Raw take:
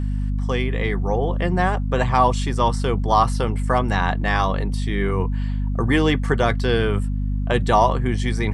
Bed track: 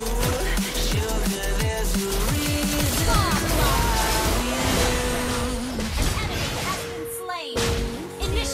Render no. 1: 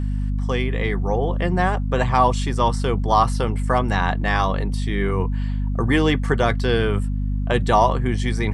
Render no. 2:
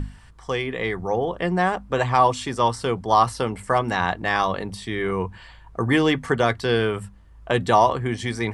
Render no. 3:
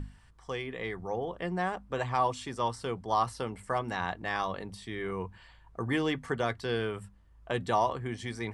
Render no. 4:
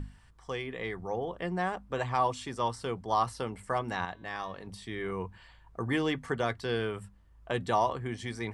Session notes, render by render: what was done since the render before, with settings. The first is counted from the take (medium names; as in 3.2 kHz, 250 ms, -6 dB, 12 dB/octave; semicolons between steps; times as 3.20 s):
no audible change
hum notches 50/100/150/200/250 Hz
trim -10.5 dB
4.05–4.67 s: feedback comb 140 Hz, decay 1.1 s, mix 50%